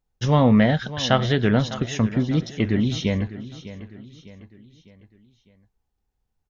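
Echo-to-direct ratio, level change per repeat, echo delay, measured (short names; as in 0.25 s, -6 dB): -14.0 dB, -7.0 dB, 0.603 s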